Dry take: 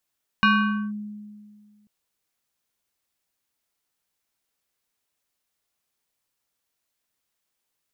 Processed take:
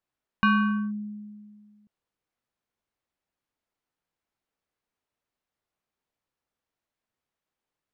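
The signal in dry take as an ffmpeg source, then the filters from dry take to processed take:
-f lavfi -i "aevalsrc='0.224*pow(10,-3*t/1.93)*sin(2*PI*209*t+1.6*clip(1-t/0.49,0,1)*sin(2*PI*6.37*209*t))':duration=1.44:sample_rate=44100"
-af "lowpass=frequency=1300:poles=1"

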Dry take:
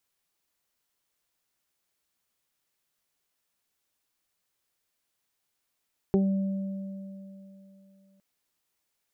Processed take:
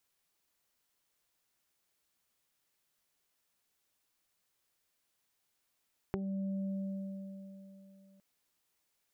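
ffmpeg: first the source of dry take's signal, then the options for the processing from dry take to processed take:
-f lavfi -i "aevalsrc='0.1*pow(10,-3*t/3.03)*sin(2*PI*194*t)+0.126*pow(10,-3*t/0.21)*sin(2*PI*388*t)+0.015*pow(10,-3*t/3.73)*sin(2*PI*582*t)+0.015*pow(10,-3*t/0.28)*sin(2*PI*776*t)':duration=2.06:sample_rate=44100"
-af "acompressor=threshold=-35dB:ratio=10"

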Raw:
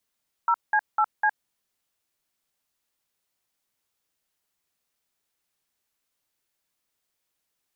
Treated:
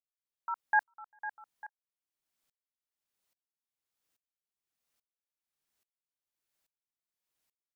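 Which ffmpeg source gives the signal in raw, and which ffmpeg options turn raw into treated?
-f lavfi -i "aevalsrc='0.0944*clip(min(mod(t,0.251),0.062-mod(t,0.251))/0.002,0,1)*(eq(floor(t/0.251),0)*(sin(2*PI*941*mod(t,0.251))+sin(2*PI*1336*mod(t,0.251)))+eq(floor(t/0.251),1)*(sin(2*PI*852*mod(t,0.251))+sin(2*PI*1633*mod(t,0.251)))+eq(floor(t/0.251),2)*(sin(2*PI*852*mod(t,0.251))+sin(2*PI*1336*mod(t,0.251)))+eq(floor(t/0.251),3)*(sin(2*PI*852*mod(t,0.251))+sin(2*PI*1633*mod(t,0.251))))':duration=1.004:sample_rate=44100"
-filter_complex "[0:a]asplit=2[link_01][link_02];[link_02]adelay=396.5,volume=-20dB,highshelf=frequency=4000:gain=-8.92[link_03];[link_01][link_03]amix=inputs=2:normalize=0,aeval=exprs='val(0)*pow(10,-33*if(lt(mod(-1.2*n/s,1),2*abs(-1.2)/1000),1-mod(-1.2*n/s,1)/(2*abs(-1.2)/1000),(mod(-1.2*n/s,1)-2*abs(-1.2)/1000)/(1-2*abs(-1.2)/1000))/20)':channel_layout=same"

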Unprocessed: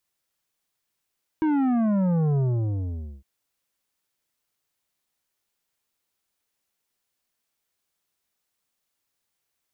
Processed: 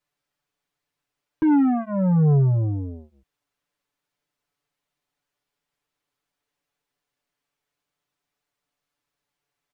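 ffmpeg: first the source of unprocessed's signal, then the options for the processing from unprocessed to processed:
-f lavfi -i "aevalsrc='0.0944*clip((1.81-t)/0.85,0,1)*tanh(3.16*sin(2*PI*320*1.81/log(65/320)*(exp(log(65/320)*t/1.81)-1)))/tanh(3.16)':duration=1.81:sample_rate=44100"
-af "lowpass=frequency=2400:poles=1,aecho=1:1:6.9:0.98"

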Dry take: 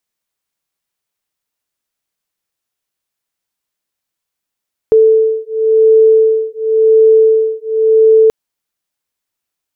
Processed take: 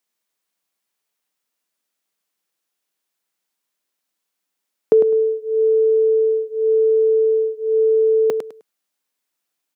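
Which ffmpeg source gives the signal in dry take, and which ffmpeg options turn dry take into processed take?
-f lavfi -i "aevalsrc='0.335*(sin(2*PI*441*t)+sin(2*PI*441.93*t))':duration=3.38:sample_rate=44100"
-af "highpass=frequency=170:width=0.5412,highpass=frequency=170:width=1.3066,acompressor=threshold=-10dB:ratio=6,aecho=1:1:103|206|309:0.422|0.097|0.0223"

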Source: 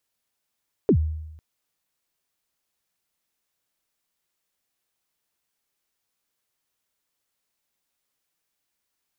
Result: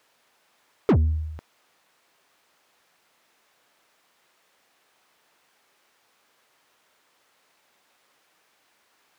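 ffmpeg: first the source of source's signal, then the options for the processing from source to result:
-f lavfi -i "aevalsrc='0.251*pow(10,-3*t/0.94)*sin(2*PI*(480*0.079/log(78/480)*(exp(log(78/480)*min(t,0.079)/0.079)-1)+78*max(t-0.079,0)))':duration=0.5:sample_rate=44100"
-filter_complex "[0:a]asplit=2[link_01][link_02];[link_02]highpass=frequency=720:poles=1,volume=32dB,asoftclip=type=tanh:threshold=-12dB[link_03];[link_01][link_03]amix=inputs=2:normalize=0,lowpass=frequency=1200:poles=1,volume=-6dB"

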